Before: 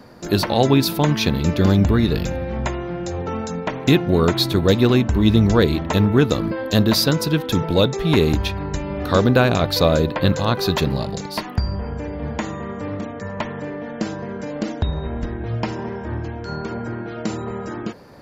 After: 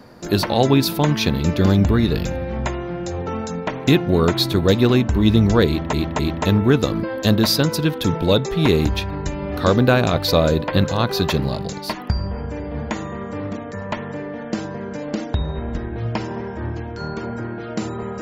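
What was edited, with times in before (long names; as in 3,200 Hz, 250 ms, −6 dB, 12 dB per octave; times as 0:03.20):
0:05.67–0:05.93: repeat, 3 plays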